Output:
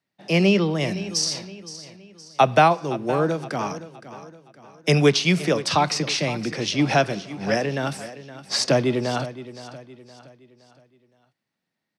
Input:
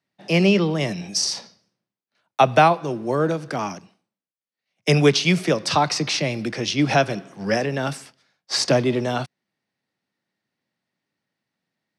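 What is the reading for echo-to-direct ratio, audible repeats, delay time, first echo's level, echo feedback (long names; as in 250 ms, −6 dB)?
−14.0 dB, 3, 517 ms, −15.0 dB, 41%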